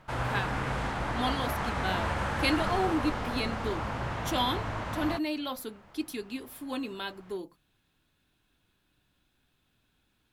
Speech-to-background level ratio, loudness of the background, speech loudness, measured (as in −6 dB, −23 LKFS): −1.0 dB, −33.0 LKFS, −34.0 LKFS